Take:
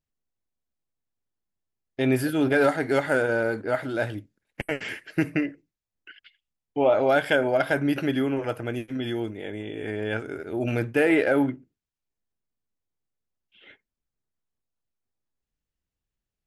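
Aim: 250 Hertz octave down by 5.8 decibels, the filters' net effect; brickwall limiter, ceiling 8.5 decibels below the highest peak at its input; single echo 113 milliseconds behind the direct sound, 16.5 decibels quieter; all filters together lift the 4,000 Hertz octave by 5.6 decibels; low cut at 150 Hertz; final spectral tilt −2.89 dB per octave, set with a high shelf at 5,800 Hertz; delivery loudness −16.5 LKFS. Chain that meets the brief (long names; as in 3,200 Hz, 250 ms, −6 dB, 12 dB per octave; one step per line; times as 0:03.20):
high-pass filter 150 Hz
parametric band 250 Hz −7 dB
parametric band 4,000 Hz +6.5 dB
high-shelf EQ 5,800 Hz +3 dB
brickwall limiter −16.5 dBFS
single-tap delay 113 ms −16.5 dB
level +12.5 dB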